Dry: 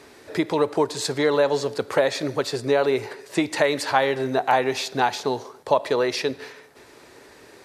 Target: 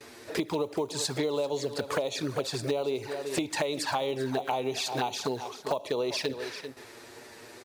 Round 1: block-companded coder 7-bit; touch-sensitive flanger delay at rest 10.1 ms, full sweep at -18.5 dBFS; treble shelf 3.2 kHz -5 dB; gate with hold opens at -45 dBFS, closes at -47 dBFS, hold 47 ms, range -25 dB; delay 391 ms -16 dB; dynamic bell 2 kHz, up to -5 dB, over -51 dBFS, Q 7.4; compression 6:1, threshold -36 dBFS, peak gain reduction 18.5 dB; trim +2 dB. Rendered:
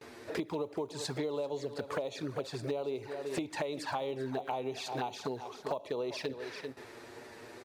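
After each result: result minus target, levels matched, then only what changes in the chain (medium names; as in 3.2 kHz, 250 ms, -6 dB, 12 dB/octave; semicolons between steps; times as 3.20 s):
compression: peak gain reduction +5.5 dB; 8 kHz band -5.5 dB
change: compression 6:1, threshold -29 dBFS, peak gain reduction 13 dB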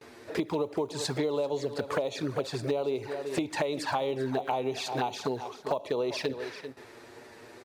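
8 kHz band -5.5 dB
change: treble shelf 3.2 kHz +4 dB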